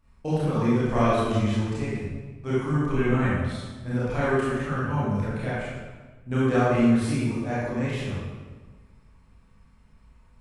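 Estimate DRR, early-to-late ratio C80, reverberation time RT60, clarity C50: −10.0 dB, 0.0 dB, 1.4 s, −3.5 dB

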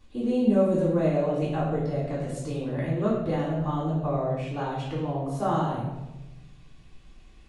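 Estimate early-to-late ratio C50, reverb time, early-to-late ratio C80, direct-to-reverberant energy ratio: 1.5 dB, 1.0 s, 4.0 dB, −9.0 dB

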